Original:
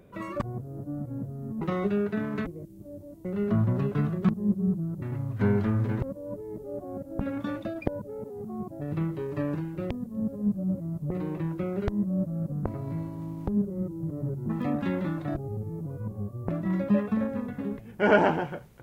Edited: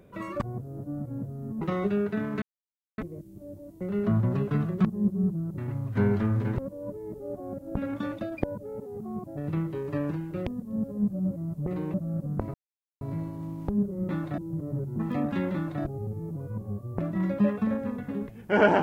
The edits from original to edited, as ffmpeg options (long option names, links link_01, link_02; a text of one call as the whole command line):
ffmpeg -i in.wav -filter_complex "[0:a]asplit=6[link_01][link_02][link_03][link_04][link_05][link_06];[link_01]atrim=end=2.42,asetpts=PTS-STARTPTS,afade=type=out:start_time=2.416:duration=0.004:curve=hsin,apad=pad_dur=0.56[link_07];[link_02]atrim=start=2.42:end=11.382,asetpts=PTS-STARTPTS,afade=type=in:duration=0.004:curve=hsin[link_08];[link_03]atrim=start=12.198:end=12.8,asetpts=PTS-STARTPTS,afade=type=out:start_time=0.598:duration=0.004:curve=hsin,apad=pad_dur=0.47[link_09];[link_04]atrim=start=12.8:end=13.882,asetpts=PTS-STARTPTS,afade=type=in:duration=0.004:curve=hsin[link_10];[link_05]atrim=start=15.028:end=15.322[link_11];[link_06]atrim=start=13.878[link_12];[link_07][link_08]concat=n=2:v=0:a=1[link_13];[link_09][link_10]concat=n=2:v=0:a=1[link_14];[link_13][link_14]acrossfade=duration=0.004:curve1=hsin:curve2=hsin[link_15];[link_15][link_11]acrossfade=duration=0.004:curve1=hsin:curve2=hsin[link_16];[link_16][link_12]acrossfade=duration=0.004:curve1=hsin:curve2=hsin" out.wav